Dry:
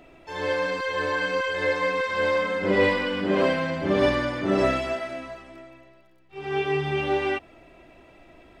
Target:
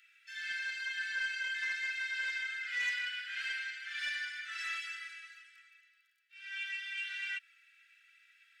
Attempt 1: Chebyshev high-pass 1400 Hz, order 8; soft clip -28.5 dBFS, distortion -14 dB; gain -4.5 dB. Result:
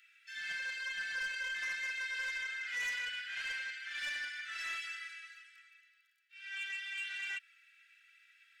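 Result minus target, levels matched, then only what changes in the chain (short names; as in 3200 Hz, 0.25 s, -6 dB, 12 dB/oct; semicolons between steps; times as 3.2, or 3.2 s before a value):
soft clip: distortion +8 dB
change: soft clip -22.5 dBFS, distortion -21 dB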